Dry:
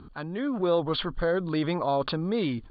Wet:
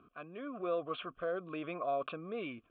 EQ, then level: vowel filter a; static phaser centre 2 kHz, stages 4; +8.5 dB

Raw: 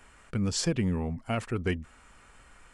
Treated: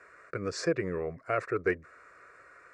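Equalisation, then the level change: band-pass 230–3400 Hz; static phaser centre 850 Hz, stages 6; +6.0 dB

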